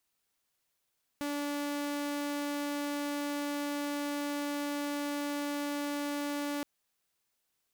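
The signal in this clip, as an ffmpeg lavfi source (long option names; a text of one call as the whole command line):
ffmpeg -f lavfi -i "aevalsrc='0.0316*(2*mod(289*t,1)-1)':duration=5.42:sample_rate=44100" out.wav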